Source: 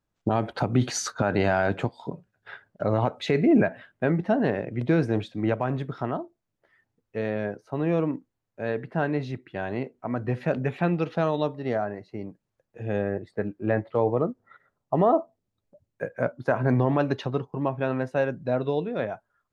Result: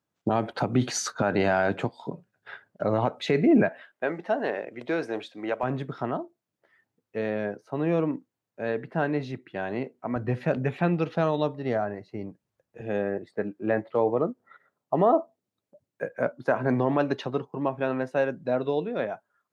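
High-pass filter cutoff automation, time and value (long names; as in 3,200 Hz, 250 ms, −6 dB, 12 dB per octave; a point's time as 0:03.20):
130 Hz
from 0:03.69 450 Hz
from 0:05.63 140 Hz
from 0:10.16 57 Hz
from 0:12.81 180 Hz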